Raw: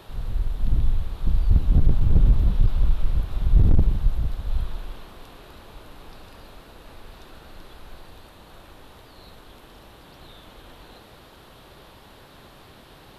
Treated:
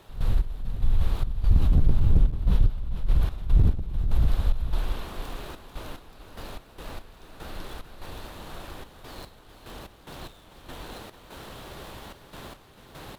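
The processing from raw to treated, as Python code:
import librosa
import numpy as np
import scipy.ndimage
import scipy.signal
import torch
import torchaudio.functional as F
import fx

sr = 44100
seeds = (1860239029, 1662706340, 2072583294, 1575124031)

p1 = fx.dead_time(x, sr, dead_ms=0.064)
p2 = fx.over_compress(p1, sr, threshold_db=-23.0, ratio=-1.0)
p3 = p1 + F.gain(torch.from_numpy(p2), 1.5).numpy()
p4 = fx.step_gate(p3, sr, bpm=73, pattern='.x..xx.xxxx.x..x', floor_db=-12.0, edge_ms=4.5)
p5 = p4 + 10.0 ** (-11.5 / 20.0) * np.pad(p4, (int(443 * sr / 1000.0), 0))[:len(p4)]
y = F.gain(torch.from_numpy(p5), -4.0).numpy()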